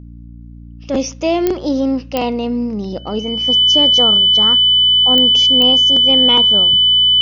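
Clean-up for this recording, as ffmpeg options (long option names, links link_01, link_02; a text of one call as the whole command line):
ffmpeg -i in.wav -af "adeclick=threshold=4,bandreject=frequency=58.3:width_type=h:width=4,bandreject=frequency=116.6:width_type=h:width=4,bandreject=frequency=174.9:width_type=h:width=4,bandreject=frequency=233.2:width_type=h:width=4,bandreject=frequency=291.5:width_type=h:width=4,bandreject=frequency=3000:width=30" out.wav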